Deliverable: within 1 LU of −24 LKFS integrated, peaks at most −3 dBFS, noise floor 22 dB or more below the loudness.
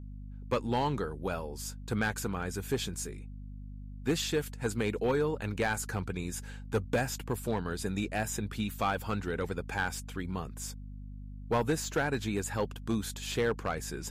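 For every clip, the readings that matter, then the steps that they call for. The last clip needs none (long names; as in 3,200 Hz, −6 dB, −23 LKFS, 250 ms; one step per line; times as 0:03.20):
share of clipped samples 0.7%; peaks flattened at −22.0 dBFS; mains hum 50 Hz; hum harmonics up to 250 Hz; level of the hum −41 dBFS; integrated loudness −33.5 LKFS; sample peak −22.0 dBFS; target loudness −24.0 LKFS
→ clipped peaks rebuilt −22 dBFS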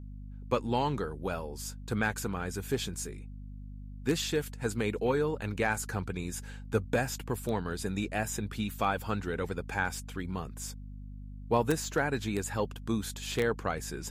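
share of clipped samples 0.0%; mains hum 50 Hz; hum harmonics up to 250 Hz; level of the hum −41 dBFS
→ hum removal 50 Hz, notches 5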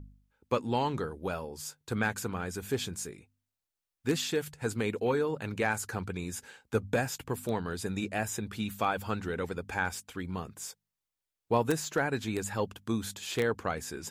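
mains hum none found; integrated loudness −33.5 LKFS; sample peak −13.0 dBFS; target loudness −24.0 LKFS
→ level +9.5 dB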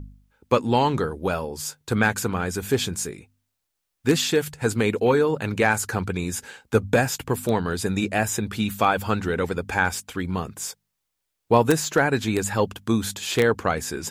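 integrated loudness −24.0 LKFS; sample peak −3.5 dBFS; background noise floor −79 dBFS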